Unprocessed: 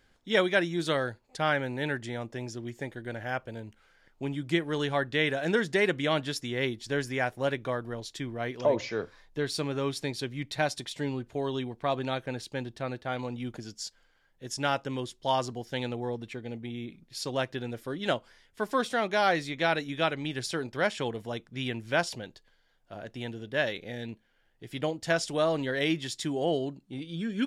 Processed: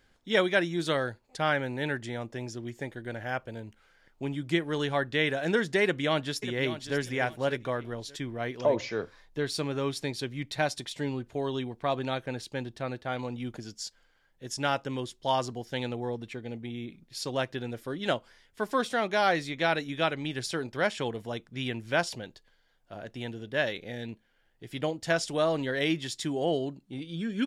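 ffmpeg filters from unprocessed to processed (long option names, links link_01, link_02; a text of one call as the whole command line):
ffmpeg -i in.wav -filter_complex "[0:a]asplit=2[link_01][link_02];[link_02]afade=type=in:start_time=5.83:duration=0.01,afade=type=out:start_time=6.97:duration=0.01,aecho=0:1:590|1180|1770:0.251189|0.0627972|0.0156993[link_03];[link_01][link_03]amix=inputs=2:normalize=0" out.wav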